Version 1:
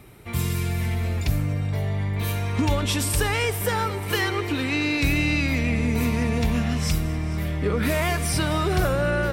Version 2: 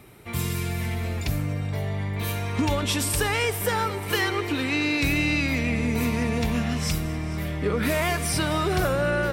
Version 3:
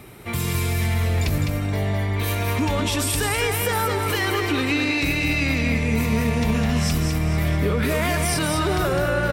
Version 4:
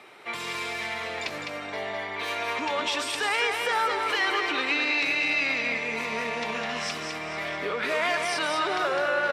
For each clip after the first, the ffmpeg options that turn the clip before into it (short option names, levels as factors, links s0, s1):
-af "lowshelf=f=92:g=-7.5"
-af "acontrast=60,alimiter=limit=0.178:level=0:latency=1:release=47,aecho=1:1:207:0.562"
-af "highpass=600,lowpass=4500"